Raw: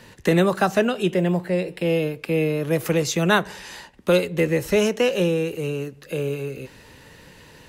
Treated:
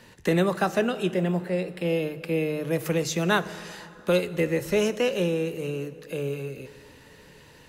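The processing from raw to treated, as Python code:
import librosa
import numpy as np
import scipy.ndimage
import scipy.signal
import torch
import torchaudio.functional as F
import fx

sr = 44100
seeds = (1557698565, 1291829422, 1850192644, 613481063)

y = fx.hum_notches(x, sr, base_hz=50, count=3)
y = fx.rev_plate(y, sr, seeds[0], rt60_s=3.2, hf_ratio=0.65, predelay_ms=0, drr_db=14.5)
y = y * librosa.db_to_amplitude(-4.5)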